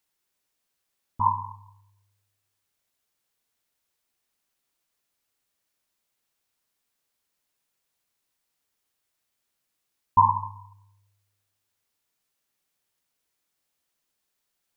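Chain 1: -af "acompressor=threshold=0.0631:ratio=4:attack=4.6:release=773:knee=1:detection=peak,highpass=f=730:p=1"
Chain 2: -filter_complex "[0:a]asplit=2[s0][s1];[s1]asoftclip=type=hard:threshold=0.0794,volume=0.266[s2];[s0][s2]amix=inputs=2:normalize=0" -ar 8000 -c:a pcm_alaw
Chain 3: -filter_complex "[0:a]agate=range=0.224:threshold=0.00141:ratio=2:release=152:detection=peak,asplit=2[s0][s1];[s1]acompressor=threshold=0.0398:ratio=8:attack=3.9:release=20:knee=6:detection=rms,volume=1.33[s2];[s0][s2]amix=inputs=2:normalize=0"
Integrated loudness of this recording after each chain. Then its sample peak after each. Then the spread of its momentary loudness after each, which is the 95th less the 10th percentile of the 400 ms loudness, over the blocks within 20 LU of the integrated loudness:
-36.0 LUFS, -23.5 LUFS, -22.0 LUFS; -19.0 dBFS, -5.0 dBFS, -4.0 dBFS; 19 LU, 17 LU, 16 LU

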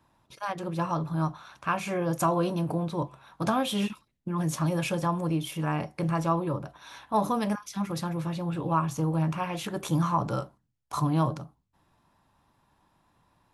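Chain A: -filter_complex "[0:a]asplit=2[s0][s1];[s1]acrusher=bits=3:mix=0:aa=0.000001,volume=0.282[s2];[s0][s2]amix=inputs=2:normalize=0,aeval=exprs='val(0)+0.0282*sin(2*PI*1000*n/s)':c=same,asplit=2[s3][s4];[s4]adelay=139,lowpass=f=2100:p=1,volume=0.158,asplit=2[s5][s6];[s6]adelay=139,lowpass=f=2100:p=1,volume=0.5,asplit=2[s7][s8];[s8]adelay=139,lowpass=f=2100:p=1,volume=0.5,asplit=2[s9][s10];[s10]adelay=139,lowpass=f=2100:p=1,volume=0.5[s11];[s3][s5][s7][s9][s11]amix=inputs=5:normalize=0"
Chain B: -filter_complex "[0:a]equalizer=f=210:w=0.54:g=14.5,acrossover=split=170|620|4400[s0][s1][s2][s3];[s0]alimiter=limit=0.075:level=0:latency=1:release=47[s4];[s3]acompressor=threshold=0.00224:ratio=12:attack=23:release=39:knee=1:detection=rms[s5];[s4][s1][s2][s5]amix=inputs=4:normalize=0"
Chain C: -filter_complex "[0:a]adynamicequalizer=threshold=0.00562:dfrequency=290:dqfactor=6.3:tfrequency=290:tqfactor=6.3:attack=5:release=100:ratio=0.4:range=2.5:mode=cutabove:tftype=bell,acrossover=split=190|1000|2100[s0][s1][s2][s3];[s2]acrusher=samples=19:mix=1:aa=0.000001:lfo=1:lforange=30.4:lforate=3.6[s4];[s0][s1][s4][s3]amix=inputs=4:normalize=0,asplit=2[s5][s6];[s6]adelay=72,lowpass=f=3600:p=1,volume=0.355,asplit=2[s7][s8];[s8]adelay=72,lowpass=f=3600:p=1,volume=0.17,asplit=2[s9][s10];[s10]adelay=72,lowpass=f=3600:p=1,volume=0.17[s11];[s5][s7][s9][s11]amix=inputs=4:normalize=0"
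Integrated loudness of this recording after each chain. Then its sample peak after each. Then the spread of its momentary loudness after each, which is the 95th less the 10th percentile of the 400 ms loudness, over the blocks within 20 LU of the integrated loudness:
-27.0 LUFS, -20.0 LUFS, -29.5 LUFS; -11.5 dBFS, -3.5 dBFS, -12.5 dBFS; 8 LU, 9 LU, 9 LU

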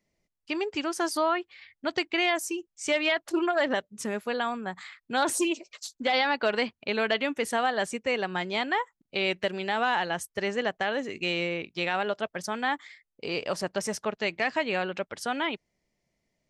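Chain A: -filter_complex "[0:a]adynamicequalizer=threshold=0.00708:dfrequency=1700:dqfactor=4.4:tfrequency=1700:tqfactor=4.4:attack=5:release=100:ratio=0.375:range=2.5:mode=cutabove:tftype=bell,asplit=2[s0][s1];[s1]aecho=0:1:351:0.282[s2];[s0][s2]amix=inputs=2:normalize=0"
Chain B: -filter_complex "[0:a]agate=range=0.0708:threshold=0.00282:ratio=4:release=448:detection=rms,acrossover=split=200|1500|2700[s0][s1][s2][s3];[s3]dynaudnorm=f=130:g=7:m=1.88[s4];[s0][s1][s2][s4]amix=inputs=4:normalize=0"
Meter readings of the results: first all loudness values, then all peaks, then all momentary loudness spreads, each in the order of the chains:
-29.0 LUFS, -27.5 LUFS; -13.5 dBFS, -9.5 dBFS; 7 LU, 8 LU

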